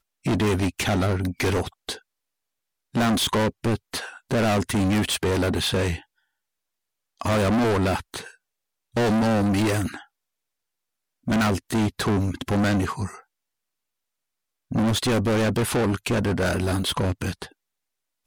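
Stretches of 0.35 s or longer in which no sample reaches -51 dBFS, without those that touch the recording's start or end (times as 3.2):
2.01–2.94
6.04–7.18
8.35–8.94
10.05–11.26
13.23–14.71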